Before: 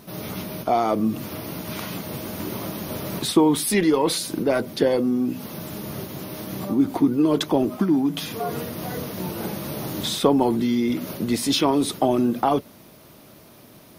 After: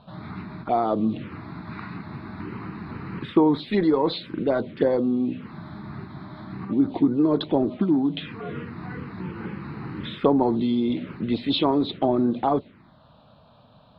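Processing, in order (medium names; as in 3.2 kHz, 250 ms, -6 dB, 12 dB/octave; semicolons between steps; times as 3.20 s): elliptic low-pass 4 kHz, stop band 40 dB; touch-sensitive phaser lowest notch 330 Hz, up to 2.9 kHz, full sweep at -16.5 dBFS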